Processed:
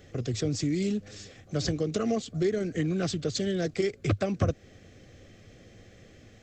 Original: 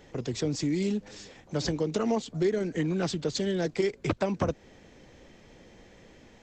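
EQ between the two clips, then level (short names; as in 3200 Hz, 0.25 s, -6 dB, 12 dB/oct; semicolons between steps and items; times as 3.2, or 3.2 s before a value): Butterworth band-stop 920 Hz, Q 3.3; bell 100 Hz +12.5 dB 0.61 oct; high shelf 6500 Hz +4.5 dB; -1.0 dB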